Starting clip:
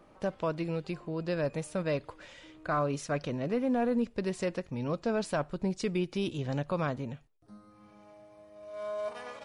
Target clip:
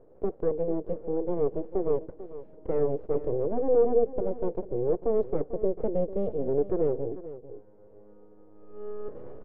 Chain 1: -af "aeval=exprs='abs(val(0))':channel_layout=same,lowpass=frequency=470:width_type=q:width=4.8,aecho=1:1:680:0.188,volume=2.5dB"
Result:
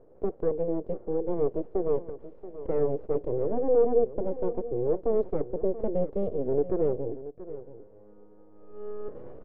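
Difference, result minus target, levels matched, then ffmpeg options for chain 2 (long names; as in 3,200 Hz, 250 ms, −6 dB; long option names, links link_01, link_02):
echo 235 ms late
-af "aeval=exprs='abs(val(0))':channel_layout=same,lowpass=frequency=470:width_type=q:width=4.8,aecho=1:1:445:0.188,volume=2.5dB"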